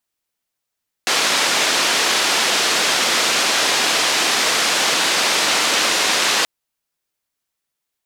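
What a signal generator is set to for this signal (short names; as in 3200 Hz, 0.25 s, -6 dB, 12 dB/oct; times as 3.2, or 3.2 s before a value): noise band 300–5300 Hz, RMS -17.5 dBFS 5.38 s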